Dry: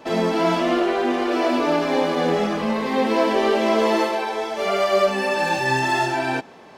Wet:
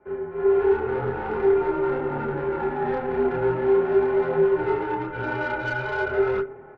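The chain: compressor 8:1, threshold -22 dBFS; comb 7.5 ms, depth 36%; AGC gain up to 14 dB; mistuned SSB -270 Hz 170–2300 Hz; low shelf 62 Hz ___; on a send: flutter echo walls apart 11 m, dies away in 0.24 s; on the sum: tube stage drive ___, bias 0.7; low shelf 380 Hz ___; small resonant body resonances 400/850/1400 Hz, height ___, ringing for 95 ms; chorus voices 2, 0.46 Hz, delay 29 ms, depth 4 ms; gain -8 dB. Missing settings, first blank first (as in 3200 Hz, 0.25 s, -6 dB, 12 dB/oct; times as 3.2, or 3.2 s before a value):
-8.5 dB, 13 dB, -2 dB, 17 dB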